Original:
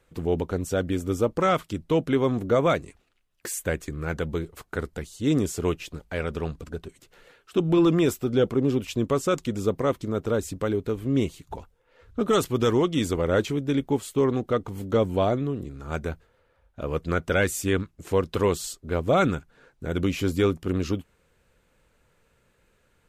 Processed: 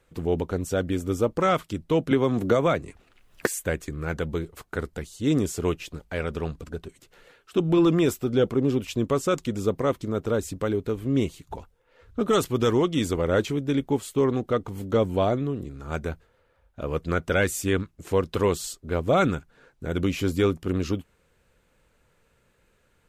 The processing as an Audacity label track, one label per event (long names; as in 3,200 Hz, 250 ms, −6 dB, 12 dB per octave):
2.110000	3.470000	multiband upward and downward compressor depth 100%